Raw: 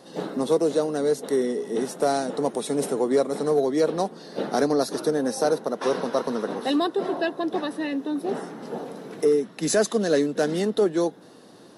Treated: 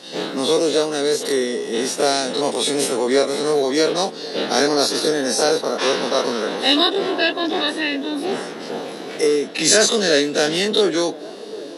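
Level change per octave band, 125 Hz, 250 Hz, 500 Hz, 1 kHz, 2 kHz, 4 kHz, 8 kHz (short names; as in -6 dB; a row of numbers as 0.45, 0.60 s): 0.0, +3.0, +4.0, +5.0, +11.5, +17.0, +12.5 dB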